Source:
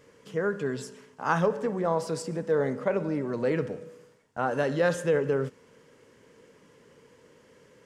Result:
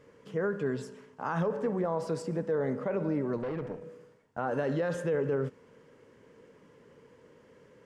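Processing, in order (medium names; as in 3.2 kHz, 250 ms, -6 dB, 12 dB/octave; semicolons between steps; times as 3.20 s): treble shelf 2.9 kHz -10.5 dB; peak limiter -21.5 dBFS, peak gain reduction 8.5 dB; 3.37–3.84 s: valve stage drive 30 dB, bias 0.6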